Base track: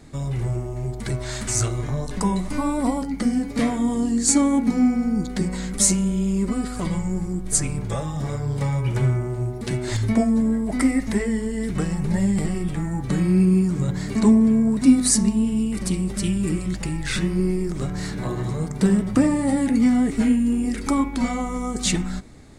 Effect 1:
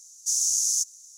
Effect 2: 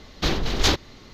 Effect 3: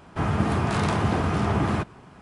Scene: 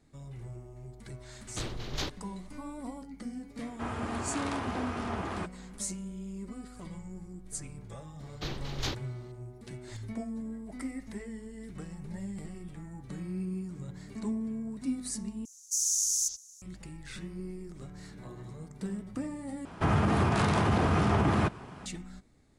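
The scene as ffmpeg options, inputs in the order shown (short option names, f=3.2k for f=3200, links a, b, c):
-filter_complex "[2:a]asplit=2[a][b];[3:a]asplit=2[c][d];[0:a]volume=-18.5dB[e];[c]equalizer=f=150:w=1.1:g=-13[f];[1:a]acrossover=split=4600[g][h];[g]adelay=80[i];[i][h]amix=inputs=2:normalize=0[j];[d]alimiter=level_in=18.5dB:limit=-1dB:release=50:level=0:latency=1[k];[e]asplit=3[l][m][n];[l]atrim=end=15.454[o];[j]atrim=end=1.17,asetpts=PTS-STARTPTS,volume=-3dB[p];[m]atrim=start=16.616:end=19.654[q];[k]atrim=end=2.21,asetpts=PTS-STARTPTS,volume=-16.5dB[r];[n]atrim=start=21.856[s];[a]atrim=end=1.13,asetpts=PTS-STARTPTS,volume=-15dB,afade=t=in:d=0.004:c=hsin,afade=t=out:st=1.126:d=0.004:c=hsin,adelay=1340[t];[f]atrim=end=2.21,asetpts=PTS-STARTPTS,volume=-8.5dB,afade=t=in:d=0.004:c=hsin,afade=t=out:st=2.206:d=0.004:c=hsin,adelay=3630[u];[b]atrim=end=1.13,asetpts=PTS-STARTPTS,volume=-14.5dB,afade=t=in:d=0.004:c=hsin,afade=t=out:st=1.126:d=0.004:c=hsin,adelay=8190[v];[o][p]acrossfade=d=0.004:c1=hsin:c2=hsin[w];[w][q]acrossfade=d=0.004:c1=hsin:c2=hsin[x];[x][r]acrossfade=d=0.004:c1=hsin:c2=hsin[y];[y][s]acrossfade=d=0.004:c1=hsin:c2=hsin[z];[z][t][u][v]amix=inputs=4:normalize=0"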